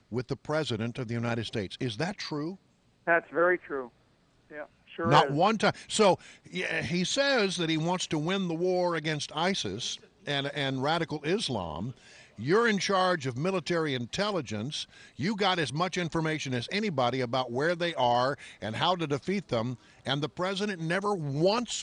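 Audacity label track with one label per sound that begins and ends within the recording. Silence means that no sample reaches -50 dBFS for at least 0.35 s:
3.070000	3.890000	sound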